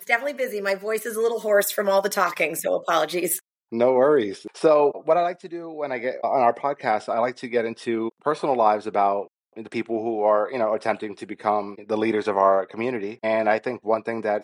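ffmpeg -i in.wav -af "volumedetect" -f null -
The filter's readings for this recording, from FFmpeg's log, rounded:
mean_volume: -23.0 dB
max_volume: -4.6 dB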